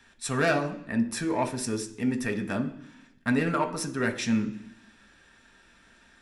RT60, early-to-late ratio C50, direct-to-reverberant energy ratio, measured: 0.65 s, 12.0 dB, 4.0 dB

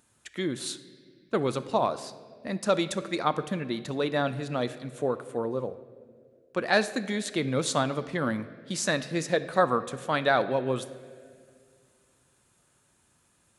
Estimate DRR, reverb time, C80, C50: 12.0 dB, 2.1 s, 15.5 dB, 14.0 dB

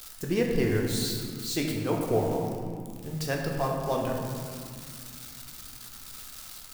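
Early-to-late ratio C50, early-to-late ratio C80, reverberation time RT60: 2.0 dB, 3.5 dB, 2.3 s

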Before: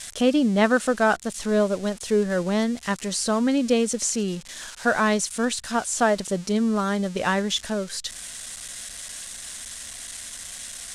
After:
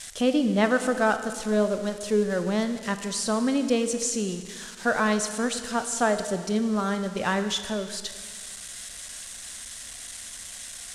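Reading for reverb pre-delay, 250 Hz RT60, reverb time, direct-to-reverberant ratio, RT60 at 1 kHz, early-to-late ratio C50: 22 ms, 1.9 s, 1.7 s, 8.5 dB, 1.7 s, 9.5 dB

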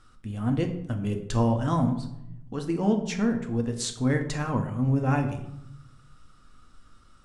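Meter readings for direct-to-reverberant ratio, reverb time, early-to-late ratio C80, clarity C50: 4.0 dB, 0.80 s, 12.0 dB, 10.0 dB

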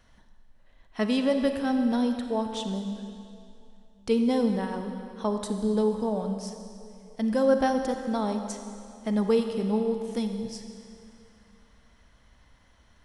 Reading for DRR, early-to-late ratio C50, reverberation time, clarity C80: 6.0 dB, 6.5 dB, 2.6 s, 7.0 dB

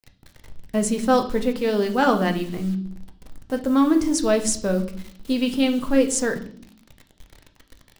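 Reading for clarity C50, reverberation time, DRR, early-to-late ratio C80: 12.5 dB, 0.60 s, 5.5 dB, 17.0 dB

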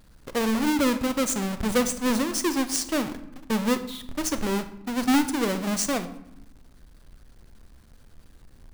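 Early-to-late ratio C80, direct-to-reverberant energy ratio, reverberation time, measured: 15.5 dB, 10.5 dB, 0.90 s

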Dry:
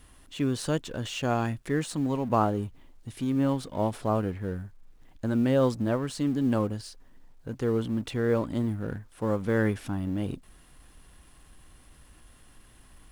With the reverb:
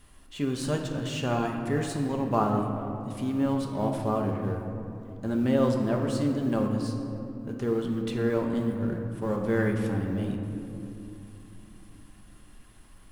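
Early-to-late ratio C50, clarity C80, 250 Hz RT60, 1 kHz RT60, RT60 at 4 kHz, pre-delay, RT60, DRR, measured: 4.0 dB, 5.5 dB, 4.4 s, 2.6 s, 1.3 s, 5 ms, 2.9 s, 1.0 dB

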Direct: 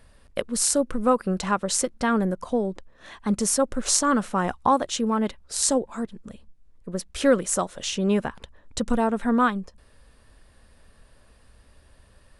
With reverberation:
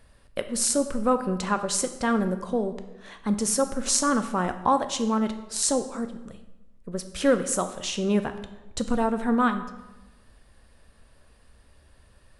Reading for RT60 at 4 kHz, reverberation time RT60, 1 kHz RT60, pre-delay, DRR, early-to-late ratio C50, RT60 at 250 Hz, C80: 0.80 s, 1.1 s, 1.0 s, 9 ms, 8.5 dB, 11.0 dB, 1.1 s, 13.5 dB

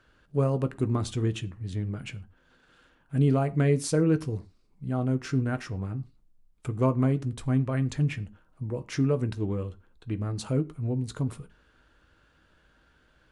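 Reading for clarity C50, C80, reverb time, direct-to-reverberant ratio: 20.5 dB, 25.0 dB, non-exponential decay, 9.5 dB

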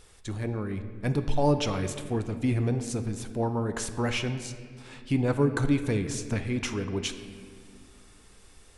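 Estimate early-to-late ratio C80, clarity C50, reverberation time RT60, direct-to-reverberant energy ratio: 11.0 dB, 9.5 dB, 2.1 s, 8.0 dB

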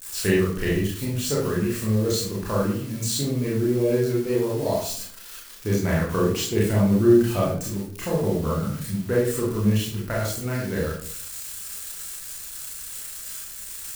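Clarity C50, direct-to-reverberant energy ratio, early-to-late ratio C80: 2.5 dB, −6.0 dB, 7.5 dB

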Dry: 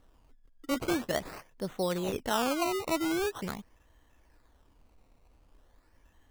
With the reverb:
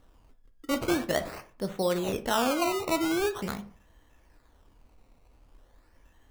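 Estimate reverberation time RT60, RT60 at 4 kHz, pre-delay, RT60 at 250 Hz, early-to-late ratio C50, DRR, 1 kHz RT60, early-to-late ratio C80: 0.40 s, 0.25 s, 11 ms, 0.50 s, 15.5 dB, 8.5 dB, 0.40 s, 20.5 dB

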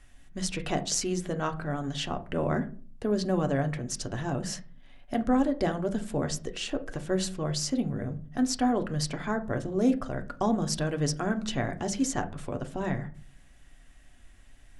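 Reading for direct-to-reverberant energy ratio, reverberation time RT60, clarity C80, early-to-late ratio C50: 6.0 dB, 0.40 s, 22.0 dB, 17.0 dB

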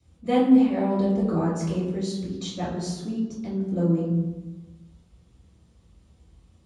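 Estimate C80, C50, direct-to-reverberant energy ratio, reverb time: 4.0 dB, 1.0 dB, −9.0 dB, 1.2 s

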